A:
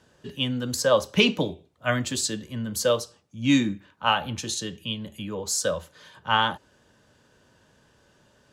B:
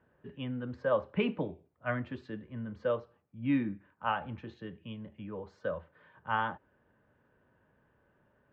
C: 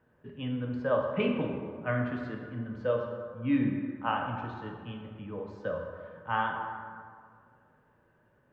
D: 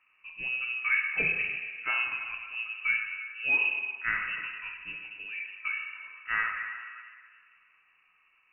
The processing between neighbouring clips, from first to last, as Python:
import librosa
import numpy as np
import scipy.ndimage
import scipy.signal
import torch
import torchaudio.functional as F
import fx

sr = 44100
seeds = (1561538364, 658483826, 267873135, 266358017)

y1 = scipy.signal.sosfilt(scipy.signal.butter(4, 2100.0, 'lowpass', fs=sr, output='sos'), x)
y1 = y1 * 10.0 ** (-8.5 / 20.0)
y2 = fx.rev_plate(y1, sr, seeds[0], rt60_s=2.0, hf_ratio=0.5, predelay_ms=0, drr_db=1.5)
y3 = fx.freq_invert(y2, sr, carrier_hz=2800)